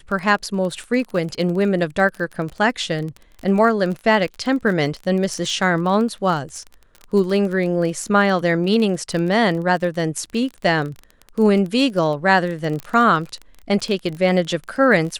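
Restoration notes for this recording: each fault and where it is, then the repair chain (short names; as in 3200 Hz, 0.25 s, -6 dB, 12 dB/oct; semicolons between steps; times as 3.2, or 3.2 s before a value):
crackle 28/s -26 dBFS
12.8 pop -15 dBFS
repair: de-click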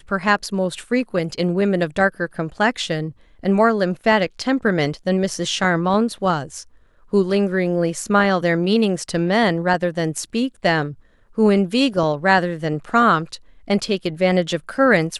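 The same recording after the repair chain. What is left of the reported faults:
none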